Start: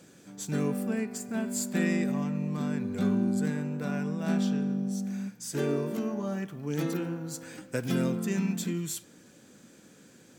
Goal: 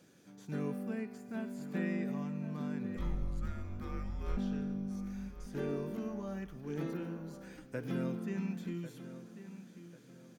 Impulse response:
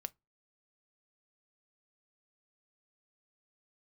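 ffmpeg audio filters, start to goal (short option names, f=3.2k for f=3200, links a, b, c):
-filter_complex "[0:a]asplit=3[a][b][c];[a]afade=t=out:st=2.96:d=0.02[d];[b]afreqshift=-240,afade=t=in:st=2.96:d=0.02,afade=t=out:st=4.36:d=0.02[e];[c]afade=t=in:st=4.36:d=0.02[f];[d][e][f]amix=inputs=3:normalize=0,acrossover=split=2600[g][h];[h]acompressor=threshold=-51dB:ratio=4:attack=1:release=60[i];[g][i]amix=inputs=2:normalize=0,equalizer=f=7.8k:w=6.9:g=-11.5,asplit=2[j][k];[k]adelay=1094,lowpass=f=4.6k:p=1,volume=-12.5dB,asplit=2[l][m];[m]adelay=1094,lowpass=f=4.6k:p=1,volume=0.37,asplit=2[n][o];[o]adelay=1094,lowpass=f=4.6k:p=1,volume=0.37,asplit=2[p][q];[q]adelay=1094,lowpass=f=4.6k:p=1,volume=0.37[r];[l][n][p][r]amix=inputs=4:normalize=0[s];[j][s]amix=inputs=2:normalize=0,volume=-8dB"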